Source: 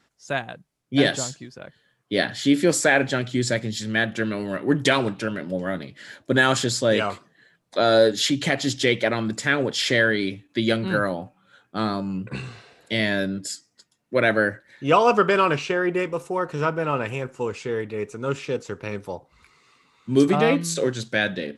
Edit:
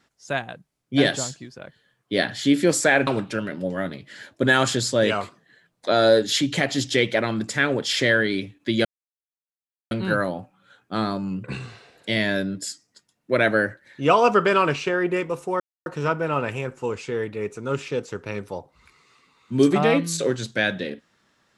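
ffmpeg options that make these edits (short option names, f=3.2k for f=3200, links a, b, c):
-filter_complex "[0:a]asplit=4[a][b][c][d];[a]atrim=end=3.072[e];[b]atrim=start=4.958:end=10.74,asetpts=PTS-STARTPTS,afade=t=out:st=5.778:d=0.004:c=hsin,apad=pad_dur=1.06[f];[c]atrim=start=10.74:end=16.43,asetpts=PTS-STARTPTS,afade=t=in:d=0.004:c=hsin,afade=t=out:st=5.686:d=0.004:c=hsin,apad=pad_dur=0.26[g];[d]atrim=start=16.43,asetpts=PTS-STARTPTS,afade=t=in:d=0.004:c=hsin[h];[f][g][h]concat=n=3:v=0:a=1[i];[e][i]acrossfade=d=0.004:c1=hsin:c2=hsin"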